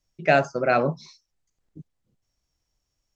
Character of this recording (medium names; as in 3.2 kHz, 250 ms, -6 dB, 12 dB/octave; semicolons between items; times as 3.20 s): noise floor -80 dBFS; spectral tilt -4.5 dB/octave